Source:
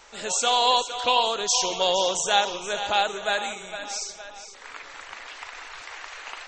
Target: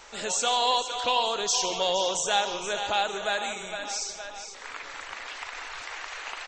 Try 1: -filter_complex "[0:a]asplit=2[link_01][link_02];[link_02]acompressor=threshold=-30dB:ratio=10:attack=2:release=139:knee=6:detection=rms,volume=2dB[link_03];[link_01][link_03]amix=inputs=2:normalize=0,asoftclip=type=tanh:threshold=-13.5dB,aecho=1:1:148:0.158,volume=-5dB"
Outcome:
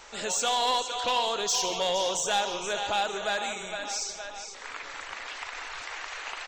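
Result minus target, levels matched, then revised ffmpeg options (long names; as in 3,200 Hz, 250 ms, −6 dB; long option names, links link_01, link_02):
soft clipping: distortion +14 dB
-filter_complex "[0:a]asplit=2[link_01][link_02];[link_02]acompressor=threshold=-30dB:ratio=10:attack=2:release=139:knee=6:detection=rms,volume=2dB[link_03];[link_01][link_03]amix=inputs=2:normalize=0,asoftclip=type=tanh:threshold=-4dB,aecho=1:1:148:0.158,volume=-5dB"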